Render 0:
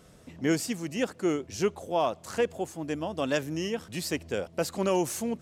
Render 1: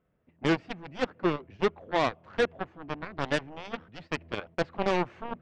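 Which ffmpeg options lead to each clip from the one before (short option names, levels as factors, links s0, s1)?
-af "lowpass=f=2500:w=0.5412,lowpass=f=2500:w=1.3066,aeval=exprs='0.188*(cos(1*acos(clip(val(0)/0.188,-1,1)))-cos(1*PI/2))+0.0422*(cos(7*acos(clip(val(0)/0.188,-1,1)))-cos(7*PI/2))':c=same,agate=range=0.2:threshold=0.00398:ratio=16:detection=peak"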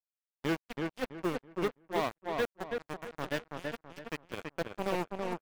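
-filter_complex "[0:a]acrusher=bits=5:mix=0:aa=0.5,asplit=2[s0][s1];[s1]adelay=329,lowpass=f=2700:p=1,volume=0.668,asplit=2[s2][s3];[s3]adelay=329,lowpass=f=2700:p=1,volume=0.31,asplit=2[s4][s5];[s5]adelay=329,lowpass=f=2700:p=1,volume=0.31,asplit=2[s6][s7];[s7]adelay=329,lowpass=f=2700:p=1,volume=0.31[s8];[s2][s4][s6][s8]amix=inputs=4:normalize=0[s9];[s0][s9]amix=inputs=2:normalize=0,volume=0.473"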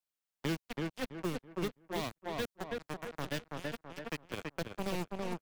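-filter_complex "[0:a]acrossover=split=240|3000[s0][s1][s2];[s1]acompressor=threshold=0.00891:ratio=4[s3];[s0][s3][s2]amix=inputs=3:normalize=0,volume=1.33"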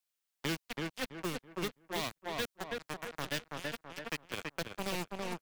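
-af "tiltshelf=f=970:g=-4,volume=1.12"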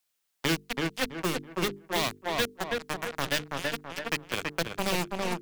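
-af "bandreject=f=50:t=h:w=6,bandreject=f=100:t=h:w=6,bandreject=f=150:t=h:w=6,bandreject=f=200:t=h:w=6,bandreject=f=250:t=h:w=6,bandreject=f=300:t=h:w=6,bandreject=f=350:t=h:w=6,bandreject=f=400:t=h:w=6,bandreject=f=450:t=h:w=6,volume=2.66"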